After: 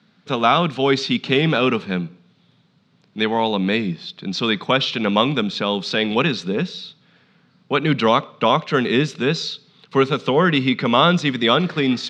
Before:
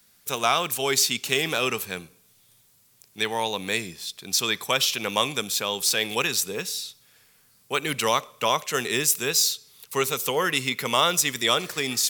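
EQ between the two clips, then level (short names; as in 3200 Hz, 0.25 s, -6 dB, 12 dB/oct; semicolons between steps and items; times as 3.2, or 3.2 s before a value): speaker cabinet 120–4000 Hz, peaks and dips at 170 Hz +6 dB, 270 Hz +4 dB, 1400 Hz +4 dB, 3900 Hz +4 dB; bell 180 Hz +12.5 dB 2 oct; bell 760 Hz +3.5 dB 1.6 oct; +1.5 dB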